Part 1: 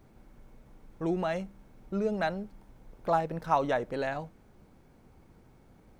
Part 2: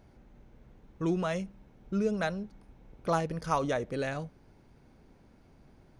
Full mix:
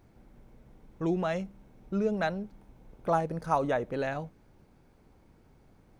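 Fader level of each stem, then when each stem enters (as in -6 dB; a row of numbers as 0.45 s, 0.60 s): -4.0 dB, -6.0 dB; 0.00 s, 0.00 s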